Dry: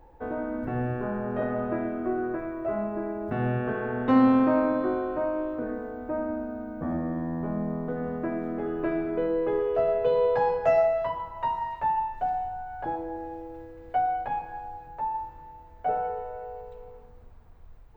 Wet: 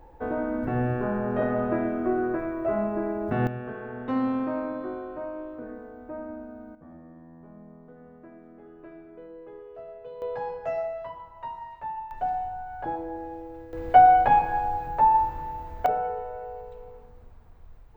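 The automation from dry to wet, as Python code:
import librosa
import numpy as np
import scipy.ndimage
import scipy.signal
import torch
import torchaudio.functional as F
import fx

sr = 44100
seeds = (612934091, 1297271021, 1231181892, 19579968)

y = fx.gain(x, sr, db=fx.steps((0.0, 3.0), (3.47, -7.0), (6.75, -18.0), (10.22, -8.5), (12.11, 0.0), (13.73, 11.5), (15.86, 1.0)))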